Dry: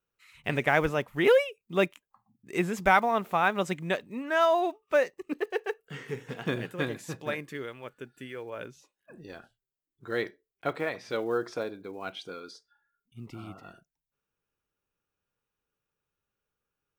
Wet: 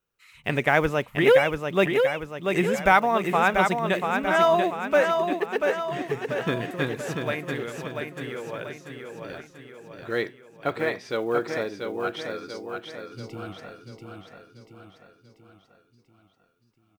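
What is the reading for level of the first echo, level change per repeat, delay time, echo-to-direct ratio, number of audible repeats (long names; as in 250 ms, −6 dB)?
−5.0 dB, −6.0 dB, 688 ms, −3.5 dB, 6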